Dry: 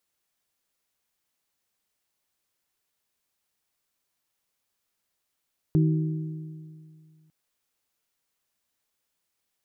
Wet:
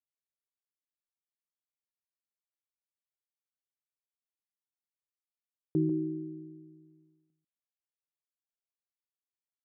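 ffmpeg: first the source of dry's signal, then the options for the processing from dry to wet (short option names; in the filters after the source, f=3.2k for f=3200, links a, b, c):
-f lavfi -i "aevalsrc='0.141*pow(10,-3*t/2.24)*sin(2*PI*157*t)+0.0668*pow(10,-3*t/1.819)*sin(2*PI*314*t)+0.0316*pow(10,-3*t/1.723)*sin(2*PI*376.8*t)':d=1.55:s=44100"
-filter_complex "[0:a]agate=range=-33dB:threshold=-54dB:ratio=3:detection=peak,bandpass=f=330:t=q:w=1.9:csg=0,asplit=2[a][b];[b]aecho=0:1:144:0.376[c];[a][c]amix=inputs=2:normalize=0"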